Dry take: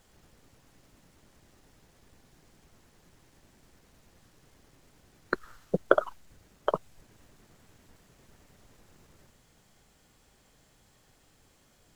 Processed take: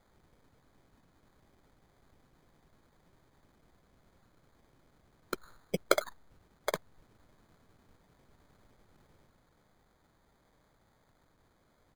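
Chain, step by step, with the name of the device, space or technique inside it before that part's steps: crushed at another speed (playback speed 0.8×; sample-and-hold 20×; playback speed 1.25×); gain -5.5 dB

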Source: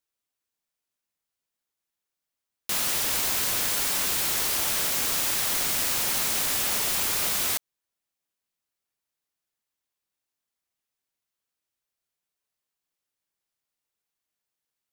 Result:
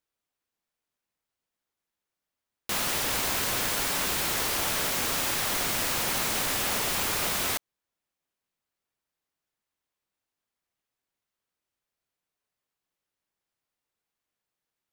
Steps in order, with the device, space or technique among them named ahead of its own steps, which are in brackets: behind a face mask (high shelf 3200 Hz -8 dB); gain +3.5 dB

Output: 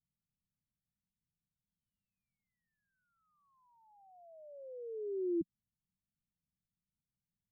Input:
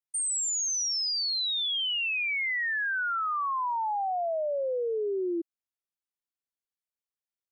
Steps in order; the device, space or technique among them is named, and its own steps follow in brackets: the neighbour's flat through the wall (LPF 180 Hz 24 dB/oct; bell 190 Hz +7.5 dB 0.9 oct); gain +17.5 dB

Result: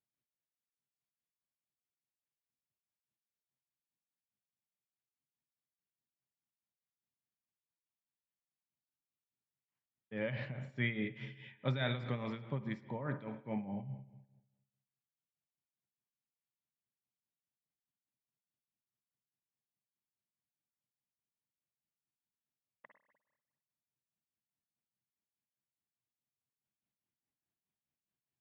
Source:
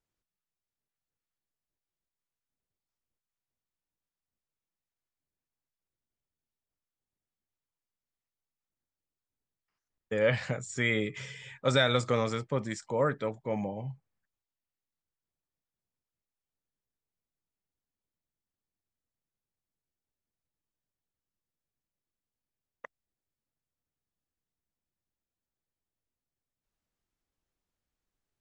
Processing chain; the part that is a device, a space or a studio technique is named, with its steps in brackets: combo amplifier with spring reverb and tremolo (spring tank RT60 1.1 s, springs 50/60 ms, chirp 80 ms, DRR 9.5 dB; tremolo 4.8 Hz, depth 70%; speaker cabinet 110–3500 Hz, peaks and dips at 130 Hz +8 dB, 210 Hz +5 dB, 490 Hz -9 dB, 1300 Hz -7 dB); gain -5.5 dB

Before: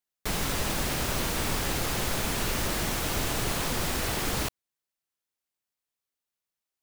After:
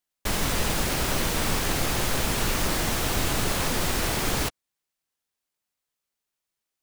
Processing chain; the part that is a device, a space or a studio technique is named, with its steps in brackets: octave pedal (harmoniser -12 st -6 dB); gain +2.5 dB

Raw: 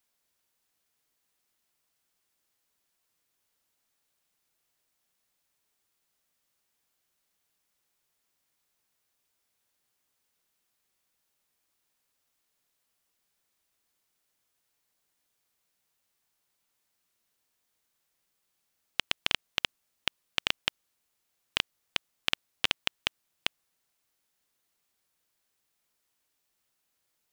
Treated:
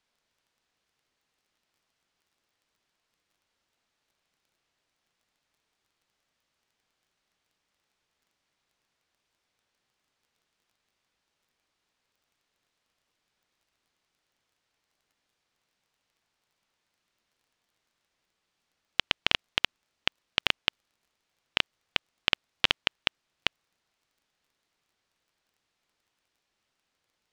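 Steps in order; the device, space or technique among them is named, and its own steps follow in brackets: lo-fi chain (LPF 4800 Hz 12 dB/oct; wow and flutter; crackle 21/s); gain +4 dB

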